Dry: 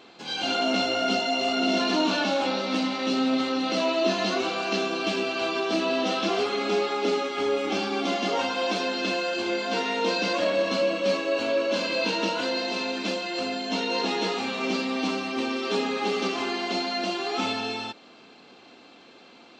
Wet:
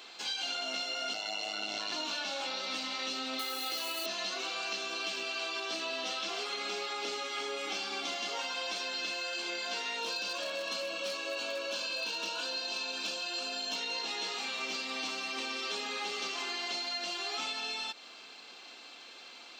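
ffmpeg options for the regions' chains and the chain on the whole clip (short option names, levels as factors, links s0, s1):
-filter_complex "[0:a]asettb=1/sr,asplit=3[s0][s1][s2];[s0]atrim=end=1.134[s3];[s1]atrim=start=1.13:end=1.92,asetpts=PTS-STARTPTS,afade=t=in:d=0.004:c=qsin,afade=t=out:st=0.786:d=0.004:c=qsin,equalizer=f=860:t=o:w=0.42:g=4.5,aeval=exprs='val(0)*sin(2*PI*52*n/s)':c=same,aeval=exprs='val(0)+0.00398*(sin(2*PI*50*n/s)+sin(2*PI*2*50*n/s)/2+sin(2*PI*3*50*n/s)/3+sin(2*PI*4*50*n/s)/4+sin(2*PI*5*50*n/s)/5)':c=same[s4];[s2]atrim=start=1.916[s5];[s3][s4]acrossfade=d=0.004:c1=hsin:c2=qsin[s6];[s6][s5]acrossfade=d=0.004:c1=qsin:c2=hsin,asettb=1/sr,asplit=3[s7][s8][s9];[s7]atrim=end=3.394[s10];[s8]atrim=start=3.39:end=4.06,asetpts=PTS-STARTPTS,afade=t=in:d=0.004:c=qsin,afade=t=out:st=0.666:d=0.004:c=qsin,highpass=63,acrusher=bits=4:mode=log:mix=0:aa=0.000001,aecho=1:1:2.4:0.53,atrim=end_sample=29547[s11];[s9]atrim=start=4.056[s12];[s10][s11]acrossfade=d=0.004:c1=hsin:c2=qsin[s13];[s13][s12]acrossfade=d=0.004:c1=qsin:c2=hsin,asettb=1/sr,asplit=3[s14][s15][s16];[s14]atrim=end=9.984[s17];[s15]atrim=start=9.98:end=13.76,asetpts=PTS-STARTPTS,afade=t=in:d=0.004:c=qsin,afade=t=out:st=3.776:d=0.004:c=qsin,asuperstop=centerf=2000:order=4:qfactor=4.9,volume=7.94,asoftclip=hard,volume=0.126[s18];[s16]atrim=start=13.756[s19];[s17][s18]acrossfade=d=0.004:c1=hsin:c2=qsin[s20];[s20][s19]acrossfade=d=0.004:c1=qsin:c2=hsin,highpass=f=1300:p=1,highshelf=f=4800:g=9,acompressor=threshold=0.0158:ratio=6,volume=1.26"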